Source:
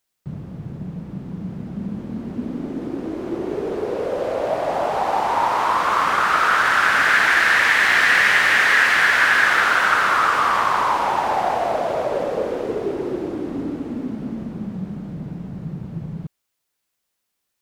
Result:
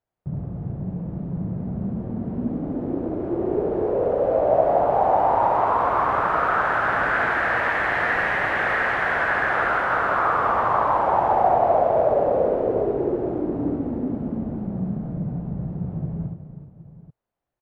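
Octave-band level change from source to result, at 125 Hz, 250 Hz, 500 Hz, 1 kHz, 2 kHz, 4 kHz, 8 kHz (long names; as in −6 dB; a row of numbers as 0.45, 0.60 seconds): +3.5 dB, +1.0 dB, +3.5 dB, −1.0 dB, −8.0 dB, −16.5 dB, below −20 dB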